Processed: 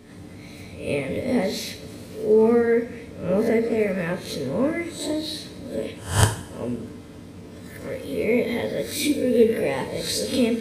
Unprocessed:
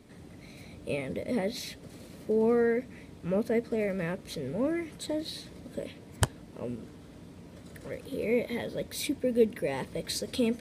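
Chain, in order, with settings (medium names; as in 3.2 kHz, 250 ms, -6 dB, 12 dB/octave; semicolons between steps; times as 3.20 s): reverse spectral sustain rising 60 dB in 0.44 s; two-slope reverb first 0.47 s, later 1.7 s, from -18 dB, DRR 3.5 dB; trim +4.5 dB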